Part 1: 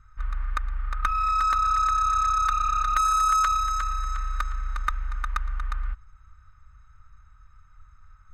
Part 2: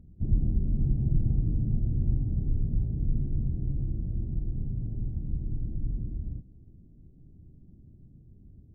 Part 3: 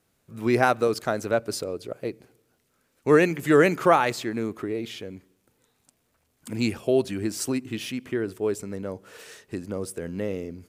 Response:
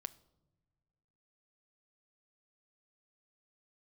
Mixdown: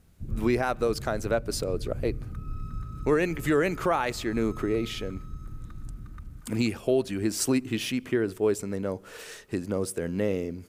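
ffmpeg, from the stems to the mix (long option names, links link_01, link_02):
-filter_complex "[0:a]acompressor=threshold=-33dB:ratio=6,adelay=1300,volume=-16dB[link_01];[1:a]volume=-8dB[link_02];[2:a]volume=2.5dB[link_03];[link_01][link_02][link_03]amix=inputs=3:normalize=0,alimiter=limit=-14dB:level=0:latency=1:release=454"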